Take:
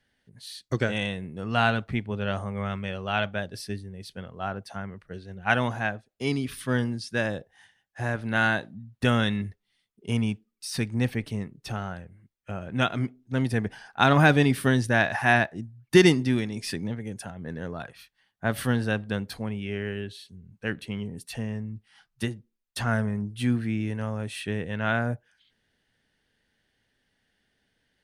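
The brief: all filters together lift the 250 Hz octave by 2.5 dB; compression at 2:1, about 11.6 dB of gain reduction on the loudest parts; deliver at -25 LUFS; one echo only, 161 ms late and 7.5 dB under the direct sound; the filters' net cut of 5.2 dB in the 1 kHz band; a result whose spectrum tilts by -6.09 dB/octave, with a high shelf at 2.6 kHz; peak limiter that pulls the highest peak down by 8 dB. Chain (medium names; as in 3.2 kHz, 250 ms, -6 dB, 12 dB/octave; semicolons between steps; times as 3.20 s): peaking EQ 250 Hz +3.5 dB; peaking EQ 1 kHz -7.5 dB; treble shelf 2.6 kHz -5 dB; compression 2:1, threshold -32 dBFS; peak limiter -22 dBFS; delay 161 ms -7.5 dB; trim +9.5 dB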